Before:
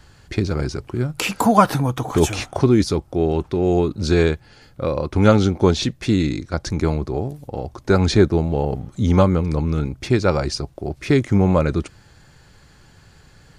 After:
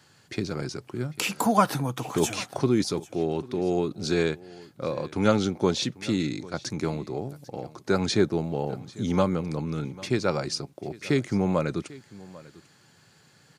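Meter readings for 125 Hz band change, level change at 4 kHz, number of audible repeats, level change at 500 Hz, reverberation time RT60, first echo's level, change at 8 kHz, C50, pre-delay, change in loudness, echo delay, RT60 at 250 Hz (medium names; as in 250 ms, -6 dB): -11.0 dB, -4.0 dB, 1, -7.5 dB, no reverb, -20.5 dB, -3.0 dB, no reverb, no reverb, -8.0 dB, 795 ms, no reverb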